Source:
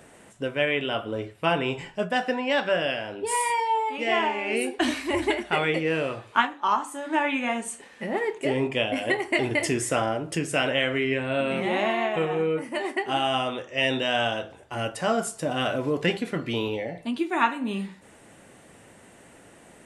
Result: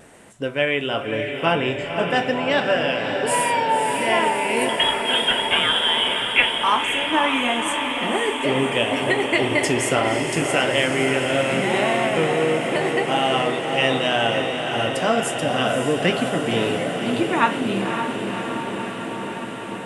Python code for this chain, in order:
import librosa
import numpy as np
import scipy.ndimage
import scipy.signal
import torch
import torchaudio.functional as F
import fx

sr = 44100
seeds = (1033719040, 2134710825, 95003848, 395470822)

y = fx.freq_invert(x, sr, carrier_hz=3600, at=(4.69, 6.53))
y = fx.vibrato(y, sr, rate_hz=0.95, depth_cents=13.0)
y = fx.echo_diffused(y, sr, ms=553, feedback_pct=78, wet_db=-6.0)
y = F.gain(torch.from_numpy(y), 3.5).numpy()